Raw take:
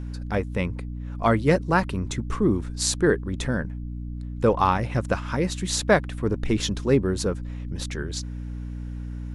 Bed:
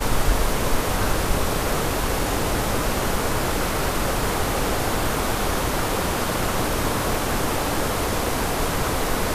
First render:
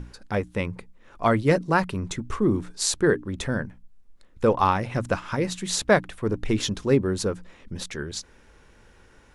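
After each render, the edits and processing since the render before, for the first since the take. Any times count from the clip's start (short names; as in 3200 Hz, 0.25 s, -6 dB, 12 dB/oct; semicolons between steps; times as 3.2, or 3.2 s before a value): notches 60/120/180/240/300 Hz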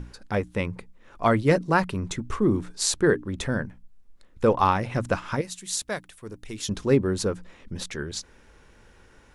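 5.41–6.69 pre-emphasis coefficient 0.8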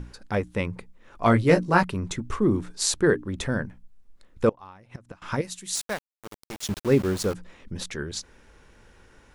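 1.24–1.83 doubler 17 ms -3 dB; 4.49–5.22 flipped gate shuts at -19 dBFS, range -25 dB; 5.75–7.34 sample gate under -32 dBFS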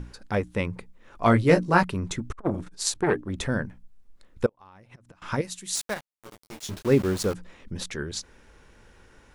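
2.31–3.3 core saturation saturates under 1000 Hz; 4.46–5.21 compressor 16:1, threshold -44 dBFS; 5.94–6.85 detuned doubles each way 18 cents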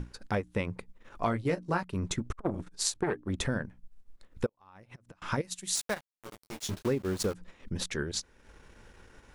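compressor 8:1, threshold -26 dBFS, peak gain reduction 13.5 dB; transient shaper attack 0 dB, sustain -8 dB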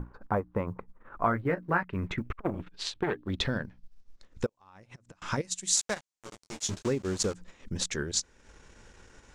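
low-pass sweep 1100 Hz -> 7200 Hz, 0.7–4.56; short-mantissa float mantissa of 6-bit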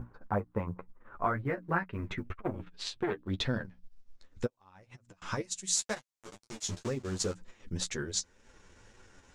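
flange 2 Hz, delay 7.7 ms, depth 4.3 ms, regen +19%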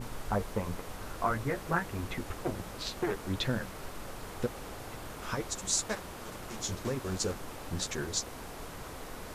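add bed -20.5 dB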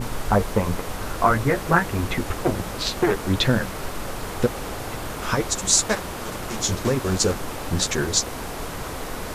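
gain +12 dB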